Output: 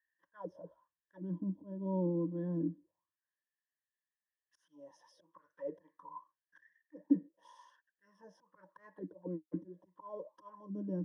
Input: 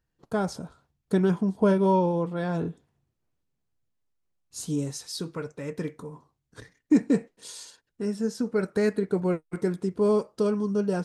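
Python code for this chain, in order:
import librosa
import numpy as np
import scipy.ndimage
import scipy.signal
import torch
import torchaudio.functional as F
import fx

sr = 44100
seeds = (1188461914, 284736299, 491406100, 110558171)

y = fx.low_shelf(x, sr, hz=94.0, db=3.5)
y = fx.auto_swell(y, sr, attack_ms=388.0)
y = fx.ripple_eq(y, sr, per_octave=1.2, db=18)
y = fx.auto_wah(y, sr, base_hz=280.0, top_hz=1800.0, q=7.0, full_db=-26.0, direction='down')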